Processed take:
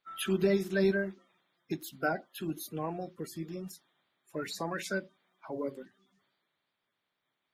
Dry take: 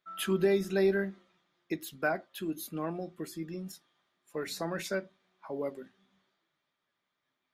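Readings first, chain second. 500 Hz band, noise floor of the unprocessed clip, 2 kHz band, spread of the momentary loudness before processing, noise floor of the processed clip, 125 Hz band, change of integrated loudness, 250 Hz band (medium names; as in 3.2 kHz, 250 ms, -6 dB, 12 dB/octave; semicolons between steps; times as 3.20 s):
-1.5 dB, -84 dBFS, 0.0 dB, 15 LU, -84 dBFS, +1.5 dB, -0.5 dB, +0.5 dB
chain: coarse spectral quantiser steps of 30 dB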